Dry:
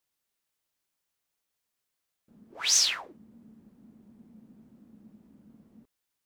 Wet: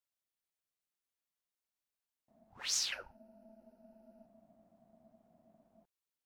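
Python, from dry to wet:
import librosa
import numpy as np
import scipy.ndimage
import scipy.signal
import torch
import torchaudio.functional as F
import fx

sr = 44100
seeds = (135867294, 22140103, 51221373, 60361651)

y = fx.ripple_eq(x, sr, per_octave=0.86, db=17, at=(2.92, 4.26))
y = y * np.sin(2.0 * np.pi * 440.0 * np.arange(len(y)) / sr)
y = F.gain(torch.from_numpy(y), -8.5).numpy()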